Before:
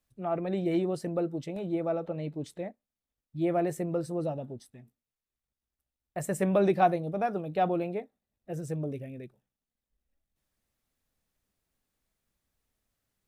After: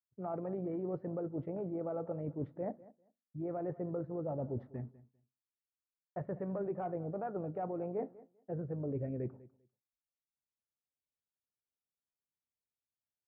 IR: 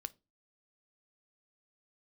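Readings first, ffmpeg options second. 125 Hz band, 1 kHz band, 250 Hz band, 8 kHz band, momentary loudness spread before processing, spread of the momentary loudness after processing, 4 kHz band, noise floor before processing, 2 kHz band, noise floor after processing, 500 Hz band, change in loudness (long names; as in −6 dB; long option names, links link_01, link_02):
−5.5 dB, −13.0 dB, −8.0 dB, below −30 dB, 16 LU, 8 LU, below −30 dB, below −85 dBFS, −18.0 dB, below −85 dBFS, −8.0 dB, −9.0 dB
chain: -filter_complex "[0:a]lowpass=frequency=1400:width=0.5412,lowpass=frequency=1400:width=1.3066,agate=range=-33dB:threshold=-54dB:ratio=3:detection=peak,highpass=77,acontrast=83,alimiter=limit=-19dB:level=0:latency=1:release=196,areverse,acompressor=threshold=-39dB:ratio=10,areverse,tremolo=f=53:d=0.261,aecho=1:1:198|396:0.106|0.018,asplit=2[link_01][link_02];[1:a]atrim=start_sample=2205[link_03];[link_02][link_03]afir=irnorm=-1:irlink=0,volume=6.5dB[link_04];[link_01][link_04]amix=inputs=2:normalize=0,volume=-3dB"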